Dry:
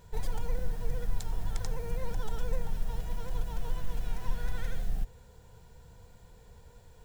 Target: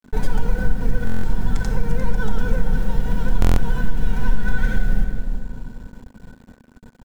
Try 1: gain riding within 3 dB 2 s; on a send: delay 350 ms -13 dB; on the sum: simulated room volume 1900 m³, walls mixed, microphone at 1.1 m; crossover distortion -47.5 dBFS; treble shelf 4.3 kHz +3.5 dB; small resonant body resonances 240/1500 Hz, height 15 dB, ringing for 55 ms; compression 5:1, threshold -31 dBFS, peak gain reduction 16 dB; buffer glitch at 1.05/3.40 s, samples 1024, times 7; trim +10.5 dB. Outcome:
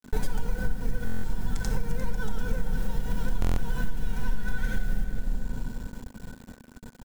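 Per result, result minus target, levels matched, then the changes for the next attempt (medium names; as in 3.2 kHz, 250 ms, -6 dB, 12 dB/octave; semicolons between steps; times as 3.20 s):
compression: peak gain reduction +9.5 dB; 8 kHz band +7.0 dB
change: compression 5:1, threshold -19 dBFS, peak gain reduction 6.5 dB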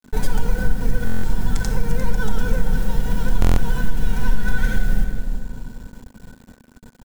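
8 kHz band +6.0 dB
change: treble shelf 4.3 kHz -6 dB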